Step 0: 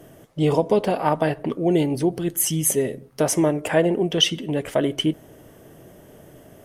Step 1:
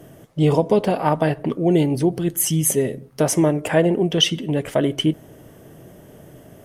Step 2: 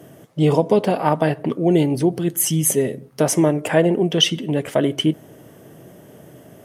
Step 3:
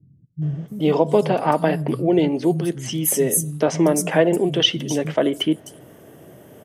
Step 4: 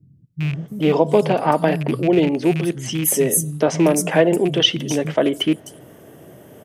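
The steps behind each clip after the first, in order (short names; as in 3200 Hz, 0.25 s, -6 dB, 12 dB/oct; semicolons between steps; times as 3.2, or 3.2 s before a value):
bell 140 Hz +4 dB 1.6 oct; gain +1 dB
HPF 110 Hz; gain +1 dB
three bands offset in time lows, mids, highs 0.42/0.68 s, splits 170/5600 Hz
rattling part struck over -22 dBFS, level -22 dBFS; gain +1.5 dB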